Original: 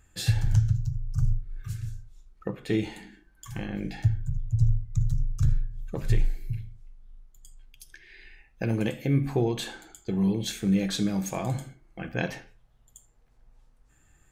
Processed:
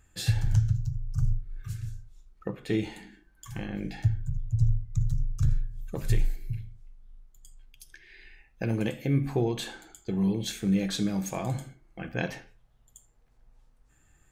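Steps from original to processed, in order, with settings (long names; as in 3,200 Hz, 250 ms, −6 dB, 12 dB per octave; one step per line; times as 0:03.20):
0:05.51–0:06.36: high-shelf EQ 6,900 Hz +10 dB
level −1.5 dB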